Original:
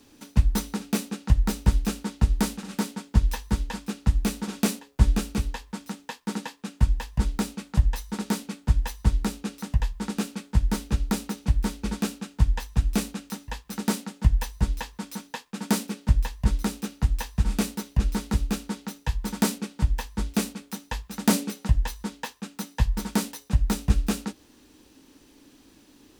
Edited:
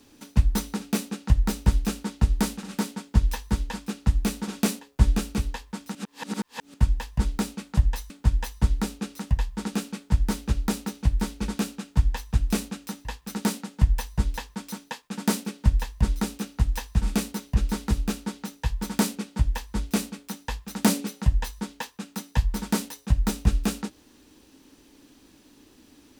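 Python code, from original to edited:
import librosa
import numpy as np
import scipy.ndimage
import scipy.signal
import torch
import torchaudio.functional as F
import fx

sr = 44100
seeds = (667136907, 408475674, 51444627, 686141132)

y = fx.edit(x, sr, fx.reverse_span(start_s=5.95, length_s=0.79),
    fx.cut(start_s=8.1, length_s=0.43), tone=tone)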